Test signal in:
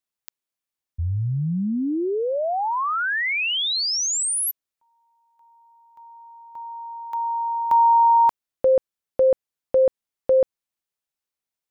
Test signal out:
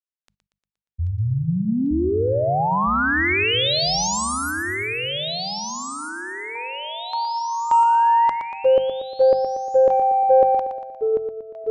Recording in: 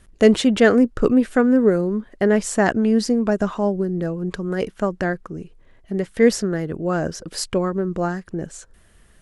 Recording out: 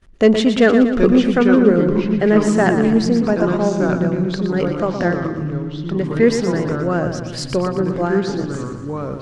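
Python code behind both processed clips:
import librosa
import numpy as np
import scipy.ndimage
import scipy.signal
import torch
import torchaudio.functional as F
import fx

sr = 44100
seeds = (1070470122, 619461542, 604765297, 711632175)

p1 = scipy.signal.sosfilt(scipy.signal.butter(2, 5600.0, 'lowpass', fs=sr, output='sos'), x)
p2 = fx.hum_notches(p1, sr, base_hz=50, count=4)
p3 = fx.gate_hold(p2, sr, open_db=-46.0, close_db=-52.0, hold_ms=23.0, range_db=-16, attack_ms=12.0, release_ms=21.0)
p4 = 10.0 ** (-10.0 / 20.0) * np.tanh(p3 / 10.0 ** (-10.0 / 20.0))
p5 = p3 + (p4 * 10.0 ** (-4.0 / 20.0))
p6 = fx.echo_pitch(p5, sr, ms=731, semitones=-3, count=3, db_per_echo=-6.0)
p7 = p6 + fx.echo_feedback(p6, sr, ms=118, feedback_pct=53, wet_db=-8.5, dry=0)
y = p7 * 10.0 ** (-2.0 / 20.0)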